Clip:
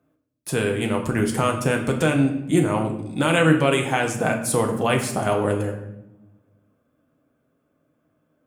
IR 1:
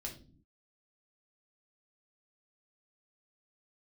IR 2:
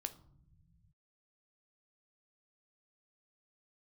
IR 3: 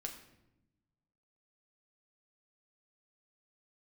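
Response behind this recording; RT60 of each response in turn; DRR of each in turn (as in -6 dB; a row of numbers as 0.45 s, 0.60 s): 3; no single decay rate, no single decay rate, 0.90 s; -1.5 dB, 9.0 dB, 2.0 dB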